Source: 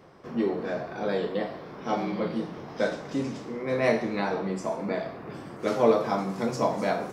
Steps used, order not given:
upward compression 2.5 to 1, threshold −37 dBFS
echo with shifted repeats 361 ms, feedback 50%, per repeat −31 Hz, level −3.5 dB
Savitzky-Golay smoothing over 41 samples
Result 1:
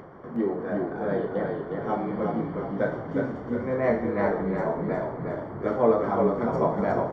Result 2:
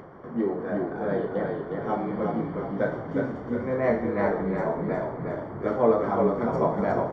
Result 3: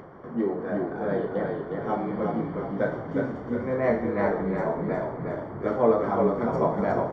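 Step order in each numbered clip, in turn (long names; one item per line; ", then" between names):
upward compression, then Savitzky-Golay smoothing, then echo with shifted repeats
upward compression, then echo with shifted repeats, then Savitzky-Golay smoothing
echo with shifted repeats, then upward compression, then Savitzky-Golay smoothing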